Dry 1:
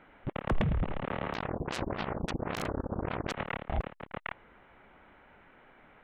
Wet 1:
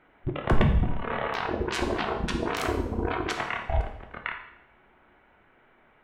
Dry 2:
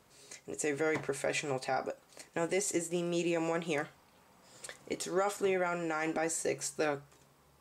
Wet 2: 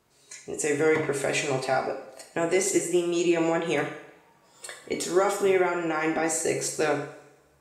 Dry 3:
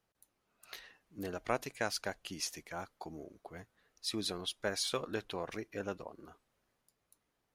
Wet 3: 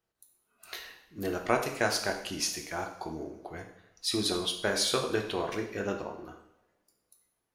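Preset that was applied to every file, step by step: spectral noise reduction 10 dB; two-slope reverb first 0.7 s, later 2 s, from -23 dB, DRR 2.5 dB; trim +6 dB

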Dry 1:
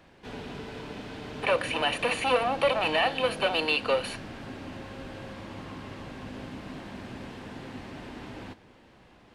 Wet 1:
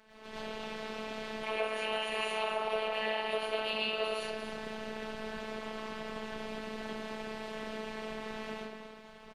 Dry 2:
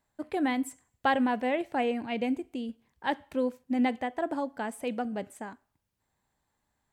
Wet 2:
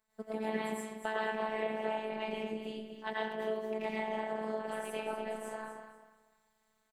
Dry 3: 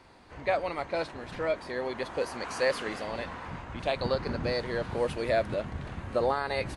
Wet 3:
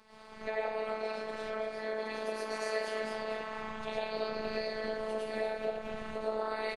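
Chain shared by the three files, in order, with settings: rattle on loud lows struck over -29 dBFS, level -26 dBFS; peaking EQ 140 Hz -13 dB 0.89 oct; algorithmic reverb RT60 0.68 s, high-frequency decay 0.7×, pre-delay 65 ms, DRR -9.5 dB; ring modulator 96 Hz; compression 2.5:1, threshold -35 dBFS; feedback delay 240 ms, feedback 26%, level -10 dB; robot voice 218 Hz

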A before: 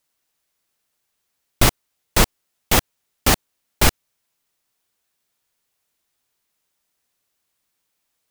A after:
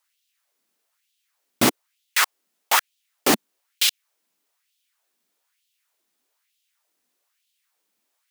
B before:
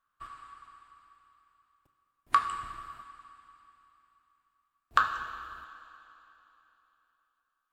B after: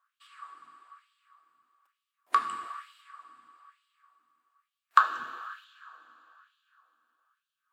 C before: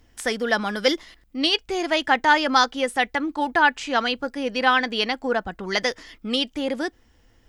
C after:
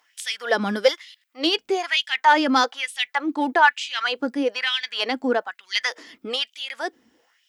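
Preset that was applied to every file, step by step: in parallel at -6 dB: saturation -14.5 dBFS; on the sum: LFO high-pass sine 1.1 Hz 210–3300 Hz; trim -4.5 dB

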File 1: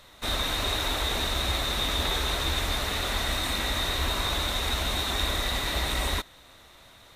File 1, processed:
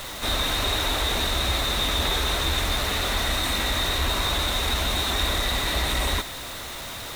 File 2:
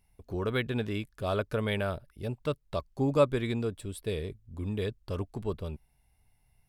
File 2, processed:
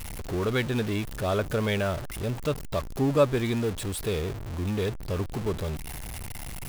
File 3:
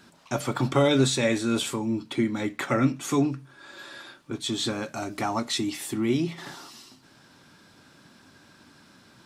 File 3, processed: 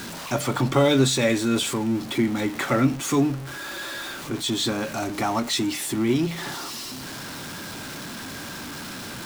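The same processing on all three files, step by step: jump at every zero crossing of -32 dBFS; trim +1.5 dB

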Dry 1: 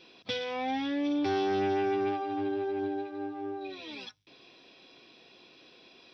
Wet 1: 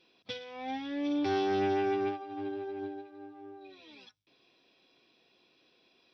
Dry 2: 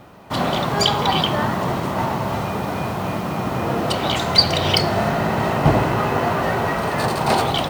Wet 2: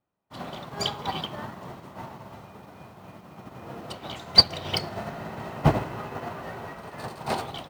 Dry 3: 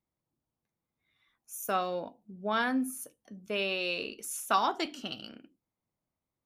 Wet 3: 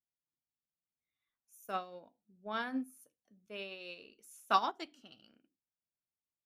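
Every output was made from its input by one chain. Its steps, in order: upward expansion 2.5:1, over -35 dBFS

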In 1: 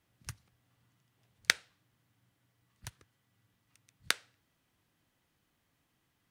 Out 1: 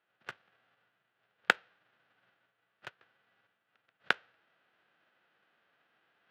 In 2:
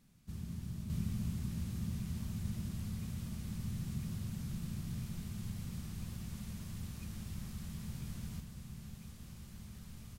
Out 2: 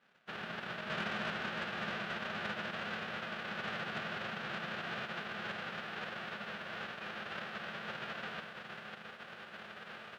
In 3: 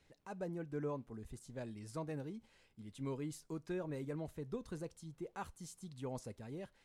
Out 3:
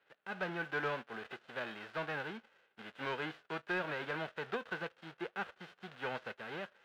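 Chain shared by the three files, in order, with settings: formants flattened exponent 0.3; reverse; upward compressor, threshold -59 dBFS; reverse; cabinet simulation 280–2800 Hz, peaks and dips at 280 Hz -8 dB, 1 kHz -5 dB, 1.5 kHz +6 dB, 2.2 kHz -5 dB; waveshaping leveller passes 1; trim +4 dB

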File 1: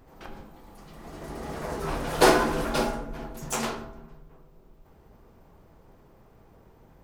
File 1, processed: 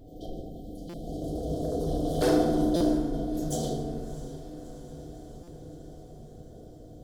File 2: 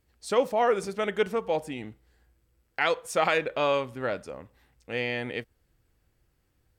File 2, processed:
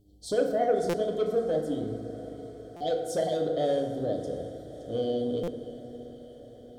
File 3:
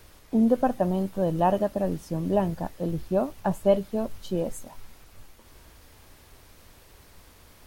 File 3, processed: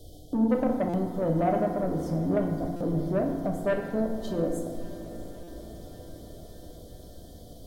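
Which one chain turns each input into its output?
in parallel at +2.5 dB: compression, threshold -37 dBFS; on the sum: treble shelf 2.3 kHz -7 dB; FFT band-reject 780–3000 Hz; mains buzz 100 Hz, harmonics 4, -62 dBFS; saturation -18.5 dBFS; on a send: echo that smears into a reverb 656 ms, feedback 67%, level -16 dB; on the sum: FDN reverb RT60 1.6 s, low-frequency decay 1.25×, high-frequency decay 0.5×, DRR 1.5 dB; buffer glitch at 0.89/2.76/5.43 s, samples 256, times 7; trim -2.5 dB

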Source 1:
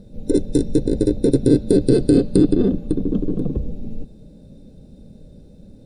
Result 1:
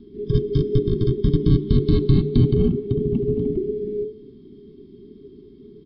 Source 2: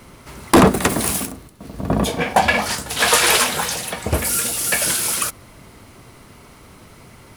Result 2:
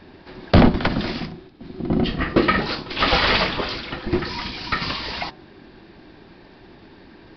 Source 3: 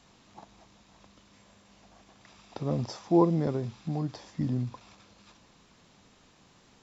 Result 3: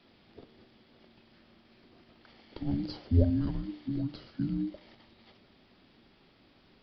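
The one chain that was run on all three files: frequency shift -430 Hz; resampled via 11.025 kHz; de-hum 149.9 Hz, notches 9; trim -1.5 dB

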